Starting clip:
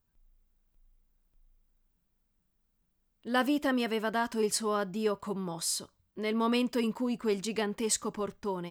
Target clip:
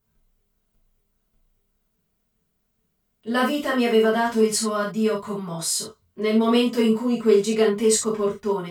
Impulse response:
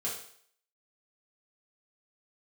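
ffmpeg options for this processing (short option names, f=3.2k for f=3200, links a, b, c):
-filter_complex "[0:a]asettb=1/sr,asplit=3[a][b][c];[a]atrim=end=4.394[d];[b]atrim=start=4.39:end=5.55,asetpts=PTS-STARTPTS,afade=t=in:d=0.004:c=qsin,afade=t=out:st=1.156:d=0.004:c=qsin,equalizer=f=400:w=1.9:g=-7[e];[c]atrim=start=5.546[f];[d][e]acrossfade=d=0.004:c1=hsin:c2=qsin[g];[g][f]acrossfade=d=0.004:c1=qsin:c2=hsin[h];[1:a]atrim=start_sample=2205,atrim=end_sample=3528,asetrate=41454,aresample=44100[i];[h][i]afir=irnorm=-1:irlink=0,volume=4.5dB"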